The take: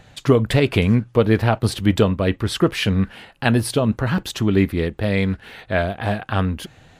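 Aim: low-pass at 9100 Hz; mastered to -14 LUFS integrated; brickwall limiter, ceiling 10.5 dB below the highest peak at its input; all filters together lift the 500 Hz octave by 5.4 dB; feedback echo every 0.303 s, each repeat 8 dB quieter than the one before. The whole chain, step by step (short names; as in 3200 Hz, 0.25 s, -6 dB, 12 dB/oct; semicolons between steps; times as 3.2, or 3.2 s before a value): LPF 9100 Hz; bell 500 Hz +6.5 dB; limiter -10 dBFS; feedback echo 0.303 s, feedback 40%, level -8 dB; gain +6.5 dB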